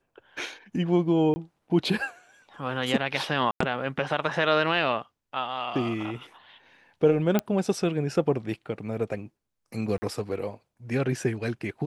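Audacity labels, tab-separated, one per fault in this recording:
1.340000	1.360000	drop-out 20 ms
3.510000	3.600000	drop-out 94 ms
7.390000	7.390000	click −10 dBFS
9.980000	10.020000	drop-out 40 ms

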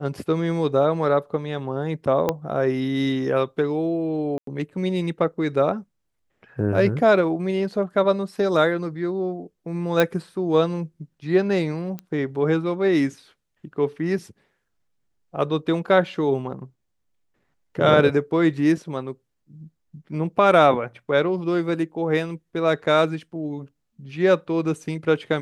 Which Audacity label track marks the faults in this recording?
2.290000	2.290000	click −8 dBFS
4.380000	4.470000	drop-out 93 ms
10.000000	10.000000	click −6 dBFS
11.990000	11.990000	click −19 dBFS

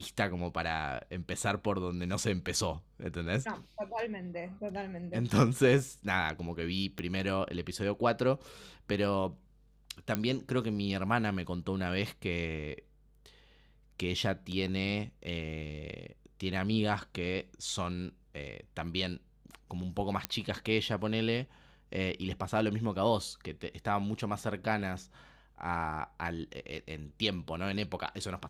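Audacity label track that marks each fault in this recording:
6.990000	6.990000	click −22 dBFS
10.150000	10.150000	click −15 dBFS
20.250000	20.250000	click −13 dBFS

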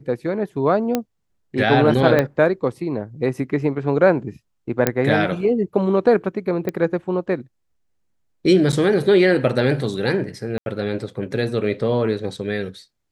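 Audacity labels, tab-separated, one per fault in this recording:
0.950000	0.950000	click −6 dBFS
2.190000	2.190000	click −6 dBFS
4.870000	4.870000	click −2 dBFS
6.690000	6.690000	click −12 dBFS
8.720000	8.730000	drop-out 8.4 ms
10.580000	10.660000	drop-out 81 ms

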